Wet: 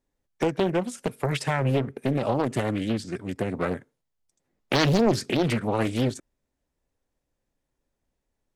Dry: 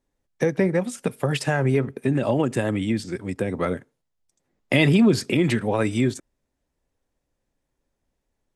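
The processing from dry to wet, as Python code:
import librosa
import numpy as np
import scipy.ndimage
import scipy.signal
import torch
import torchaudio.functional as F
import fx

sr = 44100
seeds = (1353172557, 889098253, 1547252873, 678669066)

y = fx.doppler_dist(x, sr, depth_ms=0.89)
y = F.gain(torch.from_numpy(y), -2.5).numpy()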